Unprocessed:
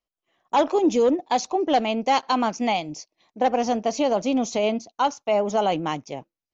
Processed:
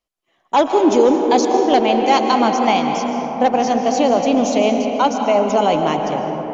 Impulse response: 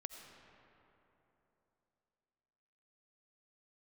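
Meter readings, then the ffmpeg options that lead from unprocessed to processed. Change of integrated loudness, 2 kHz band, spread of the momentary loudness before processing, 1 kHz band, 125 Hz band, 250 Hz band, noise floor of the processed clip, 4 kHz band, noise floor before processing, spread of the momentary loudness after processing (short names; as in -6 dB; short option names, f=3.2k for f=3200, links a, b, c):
+7.0 dB, +6.5 dB, 7 LU, +7.5 dB, +7.5 dB, +8.0 dB, -65 dBFS, +6.0 dB, under -85 dBFS, 6 LU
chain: -filter_complex "[1:a]atrim=start_sample=2205,asetrate=26019,aresample=44100[a];[0:a][a]afir=irnorm=-1:irlink=0,volume=7.5dB"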